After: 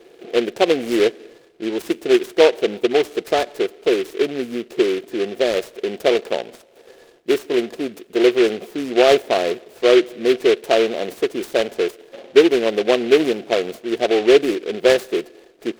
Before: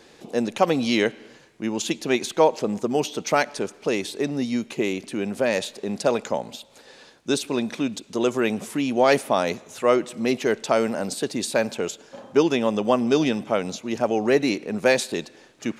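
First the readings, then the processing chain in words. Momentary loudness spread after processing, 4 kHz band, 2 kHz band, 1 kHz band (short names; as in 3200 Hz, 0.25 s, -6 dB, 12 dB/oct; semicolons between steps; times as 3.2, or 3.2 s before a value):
11 LU, +5.5 dB, +3.0 dB, 0.0 dB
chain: bell 470 Hz +15 dB 0.91 oct; small resonant body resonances 360/690/1700 Hz, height 11 dB; noise-modulated delay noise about 2300 Hz, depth 0.079 ms; gain -9 dB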